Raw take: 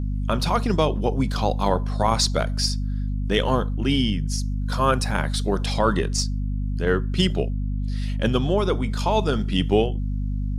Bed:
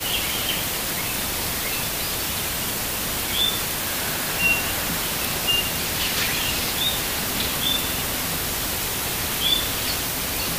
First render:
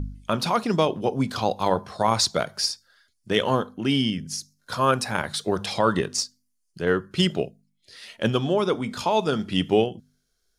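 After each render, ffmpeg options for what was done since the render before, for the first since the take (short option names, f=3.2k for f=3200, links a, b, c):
-af "bandreject=f=50:t=h:w=4,bandreject=f=100:t=h:w=4,bandreject=f=150:t=h:w=4,bandreject=f=200:t=h:w=4,bandreject=f=250:t=h:w=4"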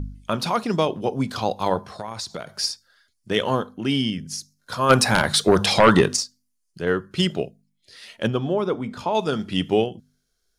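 -filter_complex "[0:a]asettb=1/sr,asplit=3[a][b][c];[a]atrim=end=1.824[d];[b]atrim=start=1.82:end=2.56,asetpts=PTS-STARTPTS,afade=t=in:d=0.004:c=qsin,afade=t=out:st=0.736:d=0.004:c=qsin,acompressor=threshold=-28dB:ratio=6:attack=3.2:release=140:knee=1:detection=peak[e];[c]atrim=start=2.556[f];[d][e]acrossfade=d=0.004:c1=hsin:c2=qsin[g];[g][f]acrossfade=d=0.004:c1=qsin:c2=hsin,asplit=3[h][i][j];[h]afade=t=out:st=4.89:d=0.02[k];[i]aeval=exprs='0.473*sin(PI/2*2*val(0)/0.473)':c=same,afade=t=in:st=4.89:d=0.02,afade=t=out:st=6.15:d=0.02[l];[j]afade=t=in:st=6.15:d=0.02[m];[k][l][m]amix=inputs=3:normalize=0,asettb=1/sr,asplit=3[n][o][p];[n]atrim=end=8.274[q];[o]atrim=start=8.27:end=9.15,asetpts=PTS-STARTPTS,afade=t=in:d=0.004:c=qsin,afade=t=out:st=0.876:d=0.004:c=qsin,highshelf=f=2.5k:g=-11.5[r];[p]atrim=start=9.146[s];[q][r]acrossfade=d=0.004:c1=hsin:c2=qsin[t];[t][s]acrossfade=d=0.004:c1=qsin:c2=hsin"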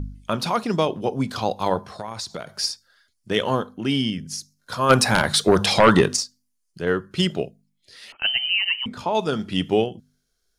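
-filter_complex "[0:a]asettb=1/sr,asplit=3[a][b][c];[a]atrim=end=8.124[d];[b]atrim=start=8.12:end=8.86,asetpts=PTS-STARTPTS,afade=t=in:d=0.004:c=qsin,afade=t=out:st=0.736:d=0.004:c=qsin,lowpass=f=2.7k:t=q:w=0.5098,lowpass=f=2.7k:t=q:w=0.6013,lowpass=f=2.7k:t=q:w=0.9,lowpass=f=2.7k:t=q:w=2.563,afreqshift=-3200[e];[c]atrim=start=8.856[f];[d][e]acrossfade=d=0.004:c1=hsin:c2=qsin[g];[g][f]acrossfade=d=0.004:c1=qsin:c2=hsin"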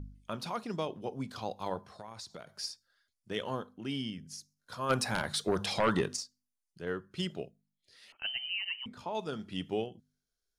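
-af "volume=-14dB"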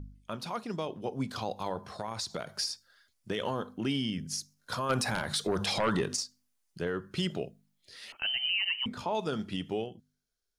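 -af "dynaudnorm=f=260:g=11:m=10dB,alimiter=limit=-21.5dB:level=0:latency=1:release=114"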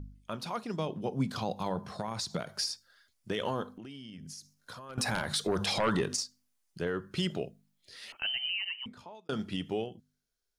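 -filter_complex "[0:a]asettb=1/sr,asplit=3[a][b][c];[a]atrim=end=0.794[d];[b]atrim=start=0.79:end=2.43,asetpts=PTS-STARTPTS,afade=t=in:d=0.004:c=qsin,afade=t=out:st=1.636:d=0.004:c=qsin,equalizer=f=170:t=o:w=0.77:g=8.5[e];[c]atrim=start=2.426[f];[d][e]acrossfade=d=0.004:c1=hsin:c2=qsin[g];[g][f]acrossfade=d=0.004:c1=qsin:c2=hsin,asettb=1/sr,asplit=3[h][i][j];[h]atrim=end=3.764[k];[i]atrim=start=3.76:end=4.98,asetpts=PTS-STARTPTS,afade=t=in:d=0.004:c=qsin,afade=t=out:st=1.216:d=0.004:c=qsin,acompressor=threshold=-42dB:ratio=10:attack=3.2:release=140:knee=1:detection=peak[l];[j]atrim=start=4.976[m];[k][l]acrossfade=d=0.004:c1=hsin:c2=qsin[n];[n][m]acrossfade=d=0.004:c1=qsin:c2=hsin,asplit=2[o][p];[o]atrim=end=9.29,asetpts=PTS-STARTPTS,afade=t=out:st=8.11:d=1.18[q];[p]atrim=start=9.29,asetpts=PTS-STARTPTS,afade=t=in:d=0.004:c=hsin[r];[q][r]concat=n=2:v=0:a=1"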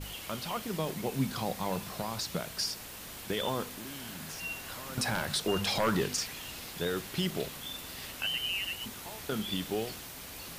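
-filter_complex "[1:a]volume=-19dB[a];[0:a][a]amix=inputs=2:normalize=0"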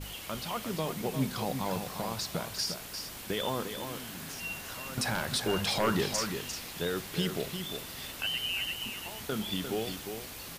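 -af "aecho=1:1:350:0.422"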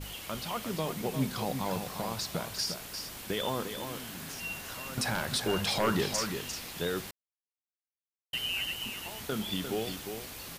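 -filter_complex "[0:a]asplit=3[a][b][c];[a]atrim=end=7.11,asetpts=PTS-STARTPTS,afade=t=out:st=7.106:d=0.004:c=hsin[d];[b]atrim=start=7.11:end=8.33,asetpts=PTS-STARTPTS,volume=0[e];[c]atrim=start=8.33,asetpts=PTS-STARTPTS,afade=t=in:d=0.004:c=hsin[f];[d][e][f]concat=n=3:v=0:a=1"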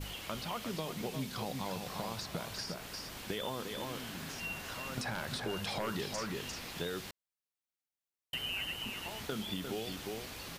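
-filter_complex "[0:a]acrossover=split=2500|6400[a][b][c];[a]acompressor=threshold=-36dB:ratio=4[d];[b]acompressor=threshold=-45dB:ratio=4[e];[c]acompressor=threshold=-54dB:ratio=4[f];[d][e][f]amix=inputs=3:normalize=0"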